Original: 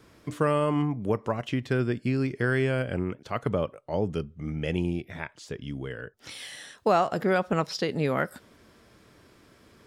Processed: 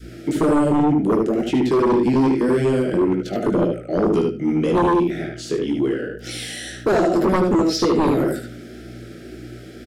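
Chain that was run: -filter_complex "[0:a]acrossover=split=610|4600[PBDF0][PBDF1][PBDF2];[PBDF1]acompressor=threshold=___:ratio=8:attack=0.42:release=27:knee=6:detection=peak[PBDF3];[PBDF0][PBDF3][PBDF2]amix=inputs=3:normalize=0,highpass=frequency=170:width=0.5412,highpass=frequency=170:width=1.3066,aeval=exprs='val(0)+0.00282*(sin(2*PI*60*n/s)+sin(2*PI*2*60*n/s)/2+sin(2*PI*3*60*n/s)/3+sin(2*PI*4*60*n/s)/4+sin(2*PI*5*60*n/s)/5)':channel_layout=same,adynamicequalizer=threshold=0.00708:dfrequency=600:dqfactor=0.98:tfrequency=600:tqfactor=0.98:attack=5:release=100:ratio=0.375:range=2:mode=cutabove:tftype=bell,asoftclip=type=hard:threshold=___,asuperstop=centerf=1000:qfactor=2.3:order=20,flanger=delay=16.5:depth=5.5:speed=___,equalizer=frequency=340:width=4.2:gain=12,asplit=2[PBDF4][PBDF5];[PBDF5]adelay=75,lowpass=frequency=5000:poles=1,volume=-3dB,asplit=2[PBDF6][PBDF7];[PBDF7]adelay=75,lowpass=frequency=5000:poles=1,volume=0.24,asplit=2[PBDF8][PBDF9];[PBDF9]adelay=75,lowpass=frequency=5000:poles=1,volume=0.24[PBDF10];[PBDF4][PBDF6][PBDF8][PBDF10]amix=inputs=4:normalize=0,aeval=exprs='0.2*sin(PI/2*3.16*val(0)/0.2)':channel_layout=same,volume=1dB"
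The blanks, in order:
-43dB, -20dB, 1.9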